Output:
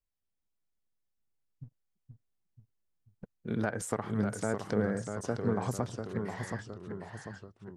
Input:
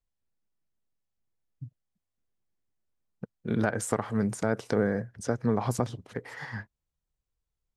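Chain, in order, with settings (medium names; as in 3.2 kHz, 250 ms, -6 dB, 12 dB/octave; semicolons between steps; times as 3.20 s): 1.63–3.34 s: partial rectifier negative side -7 dB; ever faster or slower copies 380 ms, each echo -1 st, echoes 3, each echo -6 dB; trim -5 dB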